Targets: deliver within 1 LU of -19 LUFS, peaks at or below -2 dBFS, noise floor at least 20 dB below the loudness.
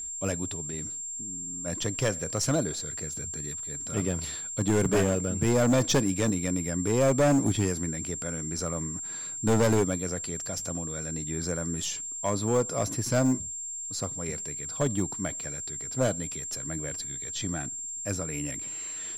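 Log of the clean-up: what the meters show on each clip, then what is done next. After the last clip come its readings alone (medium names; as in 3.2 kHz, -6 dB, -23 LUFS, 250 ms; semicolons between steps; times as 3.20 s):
clipped samples 1.2%; clipping level -18.5 dBFS; steady tone 7.4 kHz; tone level -34 dBFS; loudness -28.5 LUFS; peak level -18.5 dBFS; loudness target -19.0 LUFS
-> clip repair -18.5 dBFS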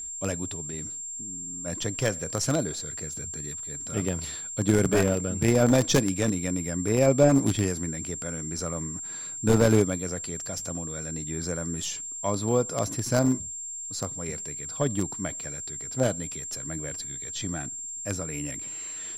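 clipped samples 0.0%; steady tone 7.4 kHz; tone level -34 dBFS
-> band-stop 7.4 kHz, Q 30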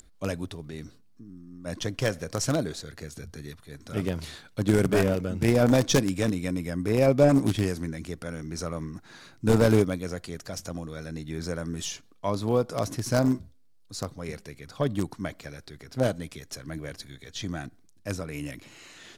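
steady tone not found; loudness -27.5 LUFS; peak level -9.0 dBFS; loudness target -19.0 LUFS
-> trim +8.5 dB; peak limiter -2 dBFS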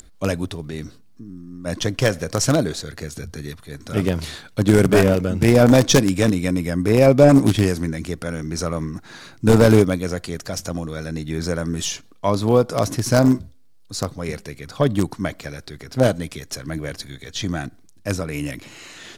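loudness -19.5 LUFS; peak level -2.0 dBFS; noise floor -48 dBFS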